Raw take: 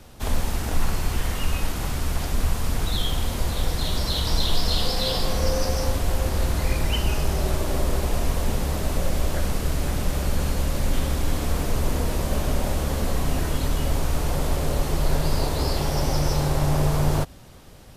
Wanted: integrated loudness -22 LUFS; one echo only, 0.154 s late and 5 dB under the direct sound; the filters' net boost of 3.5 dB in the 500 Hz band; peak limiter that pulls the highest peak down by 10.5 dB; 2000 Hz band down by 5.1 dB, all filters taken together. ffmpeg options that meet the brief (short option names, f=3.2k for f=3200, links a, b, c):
-af "equalizer=f=500:t=o:g=4.5,equalizer=f=2k:t=o:g=-7,alimiter=limit=-19dB:level=0:latency=1,aecho=1:1:154:0.562,volume=6.5dB"